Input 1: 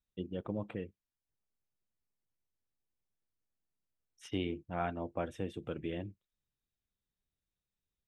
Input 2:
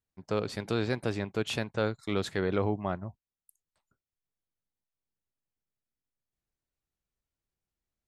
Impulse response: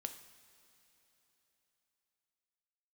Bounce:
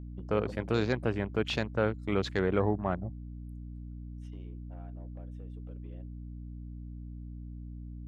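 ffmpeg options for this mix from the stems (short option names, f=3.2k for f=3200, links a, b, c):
-filter_complex "[0:a]equalizer=f=560:t=o:w=1.2:g=9,acompressor=threshold=-36dB:ratio=6,asoftclip=type=tanh:threshold=-29dB,volume=-2dB[a];[1:a]afwtdn=0.00708,aeval=exprs='val(0)+0.00251*(sin(2*PI*60*n/s)+sin(2*PI*2*60*n/s)/2+sin(2*PI*3*60*n/s)/3+sin(2*PI*4*60*n/s)/4+sin(2*PI*5*60*n/s)/5)':c=same,volume=1dB,asplit=2[b][c];[c]apad=whole_len=356166[d];[a][d]sidechaingate=range=-13dB:threshold=-38dB:ratio=16:detection=peak[e];[e][b]amix=inputs=2:normalize=0,aeval=exprs='val(0)+0.00631*(sin(2*PI*60*n/s)+sin(2*PI*2*60*n/s)/2+sin(2*PI*3*60*n/s)/3+sin(2*PI*4*60*n/s)/4+sin(2*PI*5*60*n/s)/5)':c=same"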